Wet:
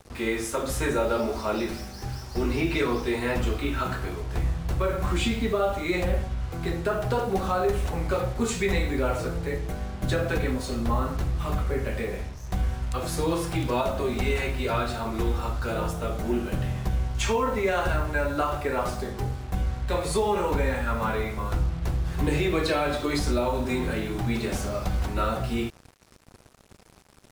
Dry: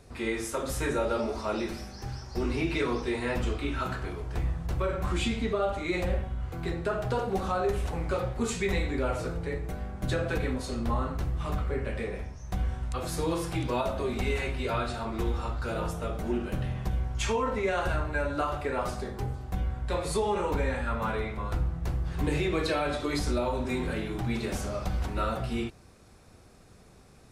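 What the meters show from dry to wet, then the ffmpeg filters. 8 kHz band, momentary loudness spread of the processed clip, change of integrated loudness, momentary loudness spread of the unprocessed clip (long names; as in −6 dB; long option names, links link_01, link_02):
+4.0 dB, 6 LU, +3.5 dB, 6 LU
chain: -af "acrusher=bits=7:mix=0:aa=0.5,volume=3.5dB"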